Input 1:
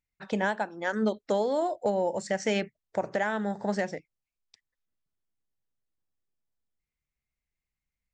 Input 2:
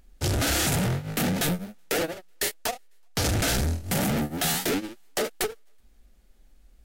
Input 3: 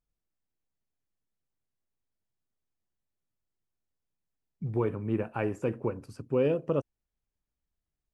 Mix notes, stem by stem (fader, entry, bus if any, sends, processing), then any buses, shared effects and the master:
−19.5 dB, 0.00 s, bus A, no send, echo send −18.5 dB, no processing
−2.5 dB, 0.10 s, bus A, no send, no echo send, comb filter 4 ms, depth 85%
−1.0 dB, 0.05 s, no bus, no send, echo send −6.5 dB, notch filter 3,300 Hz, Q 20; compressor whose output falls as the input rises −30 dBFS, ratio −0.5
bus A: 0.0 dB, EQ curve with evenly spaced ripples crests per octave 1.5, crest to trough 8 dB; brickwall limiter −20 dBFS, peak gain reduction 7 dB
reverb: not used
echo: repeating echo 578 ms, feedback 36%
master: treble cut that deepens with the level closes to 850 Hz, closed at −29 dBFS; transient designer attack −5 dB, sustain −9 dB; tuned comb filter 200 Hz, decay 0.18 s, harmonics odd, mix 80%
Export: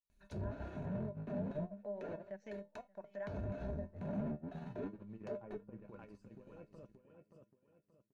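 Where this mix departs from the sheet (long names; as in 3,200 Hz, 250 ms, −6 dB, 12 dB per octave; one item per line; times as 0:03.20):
stem 1 −19.5 dB → −10.0 dB
stem 2: missing comb filter 4 ms, depth 85%
stem 3 −1.0 dB → −8.5 dB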